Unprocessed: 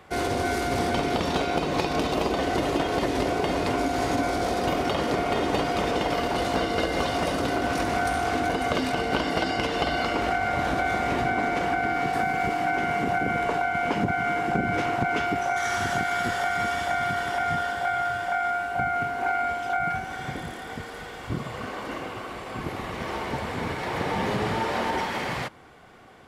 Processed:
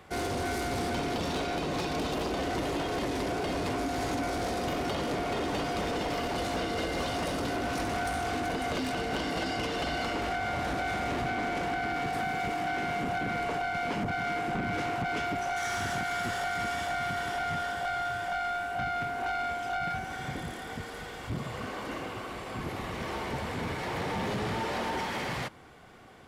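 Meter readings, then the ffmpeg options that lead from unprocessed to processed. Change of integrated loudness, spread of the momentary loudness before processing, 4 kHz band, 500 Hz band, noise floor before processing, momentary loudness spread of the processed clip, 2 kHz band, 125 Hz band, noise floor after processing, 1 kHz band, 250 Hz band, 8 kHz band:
−6.0 dB, 8 LU, −4.0 dB, −6.0 dB, −38 dBFS, 5 LU, −5.5 dB, −4.5 dB, −41 dBFS, −6.5 dB, −5.5 dB, −3.0 dB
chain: -af "equalizer=frequency=940:width=0.32:gain=-3,asoftclip=type=tanh:threshold=-27dB"

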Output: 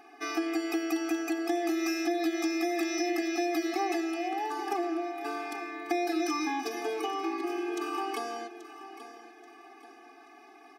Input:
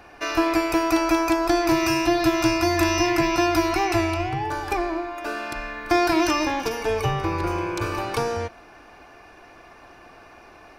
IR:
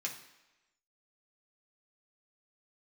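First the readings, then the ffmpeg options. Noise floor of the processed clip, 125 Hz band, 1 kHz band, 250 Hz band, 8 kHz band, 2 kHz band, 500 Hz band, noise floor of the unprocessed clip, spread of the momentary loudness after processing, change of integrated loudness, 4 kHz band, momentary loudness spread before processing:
−54 dBFS, below −40 dB, −9.5 dB, −7.5 dB, −8.5 dB, −10.0 dB, −9.0 dB, −48 dBFS, 15 LU, −8.5 dB, −10.0 dB, 9 LU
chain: -filter_complex "[0:a]asplit=2[link_01][link_02];[link_02]aecho=0:1:832|1664|2496:0.178|0.064|0.023[link_03];[link_01][link_03]amix=inputs=2:normalize=0,acompressor=threshold=-21dB:ratio=6,afftfilt=real='re*eq(mod(floor(b*sr/1024/220),2),1)':imag='im*eq(mod(floor(b*sr/1024/220),2),1)':win_size=1024:overlap=0.75,volume=-3.5dB"

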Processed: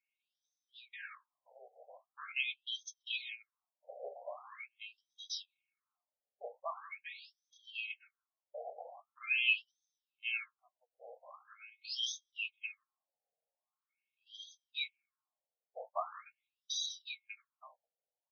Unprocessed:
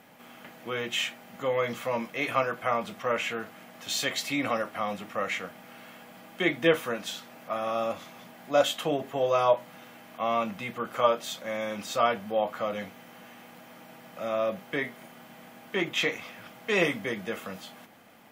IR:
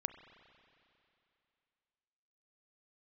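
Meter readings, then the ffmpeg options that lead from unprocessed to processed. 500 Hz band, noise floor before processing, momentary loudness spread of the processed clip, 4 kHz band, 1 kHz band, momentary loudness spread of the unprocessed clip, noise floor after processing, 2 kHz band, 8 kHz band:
−23.5 dB, −51 dBFS, 19 LU, −6.5 dB, −19.0 dB, 22 LU, below −85 dBFS, −8.0 dB, −9.5 dB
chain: -filter_complex "[0:a]afftfilt=real='real(if(lt(b,920),b+92*(1-2*mod(floor(b/92),2)),b),0)':imag='imag(if(lt(b,920),b+92*(1-2*mod(floor(b/92),2)),b),0)':win_size=2048:overlap=0.75,areverse,acompressor=mode=upward:threshold=-36dB:ratio=2.5,areverse,highshelf=frequency=4600:width_type=q:width=3:gain=12,flanger=delay=8.1:depth=7.3:regen=63:speed=0.31:shape=triangular,asplit=2[link_01][link_02];[link_02]aecho=0:1:186|372|558:0.211|0.0592|0.0166[link_03];[link_01][link_03]amix=inputs=2:normalize=0,agate=range=-37dB:threshold=-36dB:ratio=16:detection=peak,afftfilt=real='re*between(b*sr/1024,580*pow(4600/580,0.5+0.5*sin(2*PI*0.43*pts/sr))/1.41,580*pow(4600/580,0.5+0.5*sin(2*PI*0.43*pts/sr))*1.41)':imag='im*between(b*sr/1024,580*pow(4600/580,0.5+0.5*sin(2*PI*0.43*pts/sr))/1.41,580*pow(4600/580,0.5+0.5*sin(2*PI*0.43*pts/sr))*1.41)':win_size=1024:overlap=0.75,volume=2dB"

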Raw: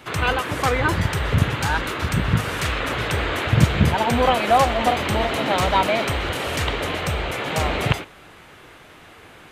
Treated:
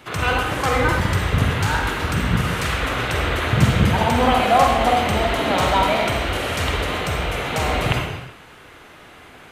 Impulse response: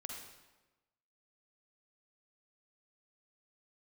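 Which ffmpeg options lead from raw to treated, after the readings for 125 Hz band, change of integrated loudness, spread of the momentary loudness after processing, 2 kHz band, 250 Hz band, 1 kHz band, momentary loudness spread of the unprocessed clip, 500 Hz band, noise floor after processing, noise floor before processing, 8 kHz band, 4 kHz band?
+1.0 dB, +1.5 dB, 7 LU, +1.5 dB, +1.5 dB, +2.0 dB, 7 LU, +1.0 dB, −44 dBFS, −46 dBFS, +1.0 dB, +1.5 dB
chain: -filter_complex "[1:a]atrim=start_sample=2205,afade=type=out:start_time=0.45:duration=0.01,atrim=end_sample=20286[link_01];[0:a][link_01]afir=irnorm=-1:irlink=0,volume=4dB"

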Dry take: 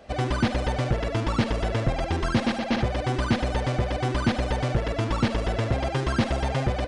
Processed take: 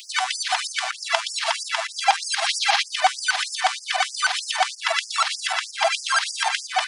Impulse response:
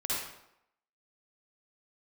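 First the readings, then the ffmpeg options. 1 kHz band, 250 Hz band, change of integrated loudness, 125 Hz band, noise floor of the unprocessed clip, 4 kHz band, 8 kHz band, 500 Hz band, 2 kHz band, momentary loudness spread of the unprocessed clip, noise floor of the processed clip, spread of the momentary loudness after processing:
+7.5 dB, below −40 dB, +3.5 dB, below −40 dB, −32 dBFS, +12.5 dB, +16.5 dB, −4.0 dB, +9.5 dB, 2 LU, −40 dBFS, 4 LU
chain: -filter_complex "[0:a]equalizer=frequency=120:width_type=o:width=2.3:gain=14.5,acompressor=threshold=-17dB:ratio=5,highshelf=frequency=6500:gain=6.5,acrossover=split=150|3000[link_01][link_02][link_03];[link_02]acompressor=threshold=-32dB:ratio=1.5[link_04];[link_01][link_04][link_03]amix=inputs=3:normalize=0,alimiter=level_in=20.5dB:limit=-1dB:release=50:level=0:latency=1,afftfilt=real='re*gte(b*sr/1024,620*pow(4800/620,0.5+0.5*sin(2*PI*3.2*pts/sr)))':imag='im*gte(b*sr/1024,620*pow(4800/620,0.5+0.5*sin(2*PI*3.2*pts/sr)))':win_size=1024:overlap=0.75,volume=2dB"

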